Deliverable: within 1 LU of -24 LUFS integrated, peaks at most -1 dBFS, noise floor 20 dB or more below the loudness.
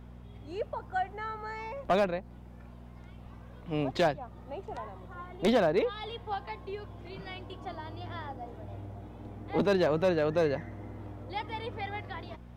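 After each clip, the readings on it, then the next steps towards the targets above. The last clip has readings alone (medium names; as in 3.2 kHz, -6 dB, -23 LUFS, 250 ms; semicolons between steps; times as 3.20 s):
clipped samples 0.3%; clipping level -18.5 dBFS; hum 60 Hz; highest harmonic 240 Hz; hum level -46 dBFS; loudness -32.5 LUFS; peak level -18.5 dBFS; loudness target -24.0 LUFS
-> clip repair -18.5 dBFS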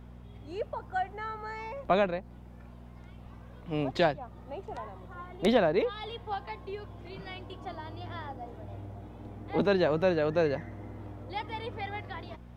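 clipped samples 0.0%; hum 60 Hz; highest harmonic 240 Hz; hum level -46 dBFS
-> de-hum 60 Hz, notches 4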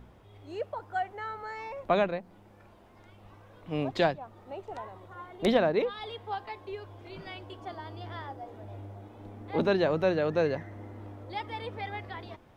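hum not found; loudness -32.0 LUFS; peak level -11.5 dBFS; loudness target -24.0 LUFS
-> trim +8 dB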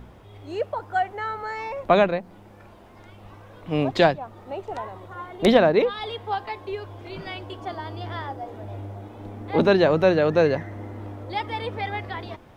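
loudness -24.0 LUFS; peak level -3.5 dBFS; noise floor -48 dBFS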